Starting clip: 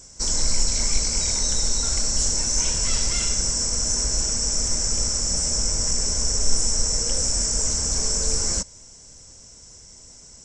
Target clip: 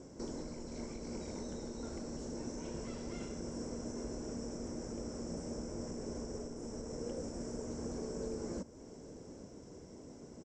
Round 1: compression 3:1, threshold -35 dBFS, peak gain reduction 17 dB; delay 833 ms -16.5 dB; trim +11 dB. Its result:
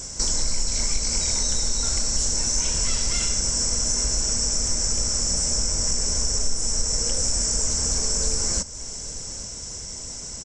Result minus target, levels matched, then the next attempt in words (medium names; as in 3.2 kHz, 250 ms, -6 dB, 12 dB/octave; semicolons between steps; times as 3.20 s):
250 Hz band -18.0 dB
compression 3:1, threshold -35 dBFS, peak gain reduction 17 dB; band-pass filter 320 Hz, Q 1.7; delay 833 ms -16.5 dB; trim +11 dB